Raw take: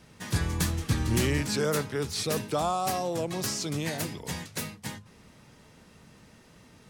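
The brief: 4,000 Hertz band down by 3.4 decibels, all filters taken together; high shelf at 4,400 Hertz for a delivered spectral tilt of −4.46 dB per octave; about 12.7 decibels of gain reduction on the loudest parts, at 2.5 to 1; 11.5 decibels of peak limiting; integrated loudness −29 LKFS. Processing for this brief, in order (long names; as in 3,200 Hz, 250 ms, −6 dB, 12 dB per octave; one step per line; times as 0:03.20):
parametric band 4,000 Hz −7 dB
high-shelf EQ 4,400 Hz +4 dB
downward compressor 2.5 to 1, threshold −41 dBFS
level +17 dB
brickwall limiter −19 dBFS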